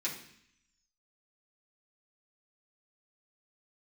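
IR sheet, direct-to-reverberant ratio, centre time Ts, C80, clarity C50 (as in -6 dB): -7.0 dB, 25 ms, 10.5 dB, 7.5 dB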